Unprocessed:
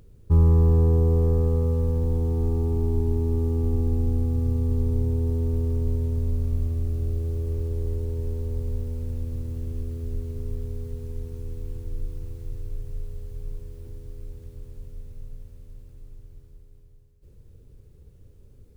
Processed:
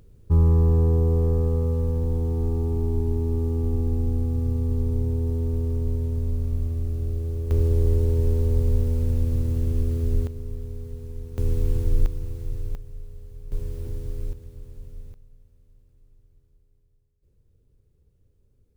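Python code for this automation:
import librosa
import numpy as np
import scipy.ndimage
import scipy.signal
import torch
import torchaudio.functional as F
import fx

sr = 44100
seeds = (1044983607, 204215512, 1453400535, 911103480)

y = fx.gain(x, sr, db=fx.steps((0.0, -0.5), (7.51, 7.5), (10.27, -2.0), (11.38, 11.0), (12.06, 4.0), (12.75, -5.0), (13.52, 8.0), (14.33, -0.5), (15.14, -12.5)))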